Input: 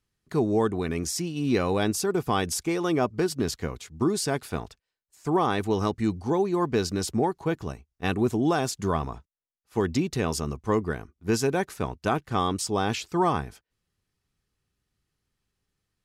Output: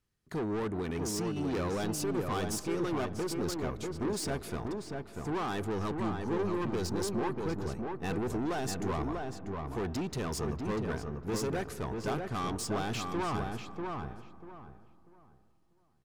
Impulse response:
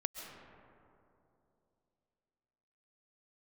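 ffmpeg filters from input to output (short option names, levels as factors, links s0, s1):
-filter_complex "[0:a]asoftclip=type=tanh:threshold=0.0355,asplit=2[s0][s1];[s1]adelay=642,lowpass=f=2000:p=1,volume=0.668,asplit=2[s2][s3];[s3]adelay=642,lowpass=f=2000:p=1,volume=0.27,asplit=2[s4][s5];[s5]adelay=642,lowpass=f=2000:p=1,volume=0.27,asplit=2[s6][s7];[s7]adelay=642,lowpass=f=2000:p=1,volume=0.27[s8];[s0][s2][s4][s6][s8]amix=inputs=5:normalize=0,asplit=2[s9][s10];[1:a]atrim=start_sample=2205,lowpass=2200[s11];[s10][s11]afir=irnorm=-1:irlink=0,volume=0.299[s12];[s9][s12]amix=inputs=2:normalize=0,volume=0.668"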